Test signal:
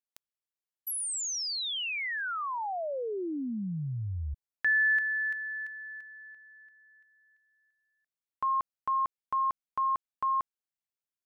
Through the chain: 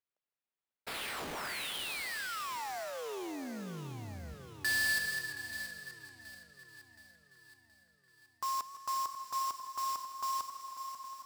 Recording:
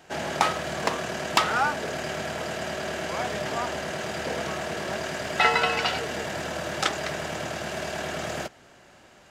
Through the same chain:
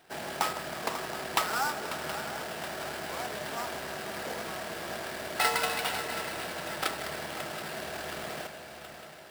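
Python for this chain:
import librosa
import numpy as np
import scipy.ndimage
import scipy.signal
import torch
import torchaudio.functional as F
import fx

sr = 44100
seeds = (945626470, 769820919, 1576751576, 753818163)

p1 = fx.peak_eq(x, sr, hz=570.0, db=-2.5, octaves=0.33)
p2 = p1 + fx.echo_swing(p1, sr, ms=723, ratio=3, feedback_pct=55, wet_db=-12, dry=0)
p3 = fx.sample_hold(p2, sr, seeds[0], rate_hz=6500.0, jitter_pct=20)
p4 = fx.low_shelf(p3, sr, hz=180.0, db=-7.5)
p5 = fx.echo_warbled(p4, sr, ms=160, feedback_pct=76, rate_hz=2.8, cents=60, wet_db=-15.0)
y = p5 * librosa.db_to_amplitude(-6.0)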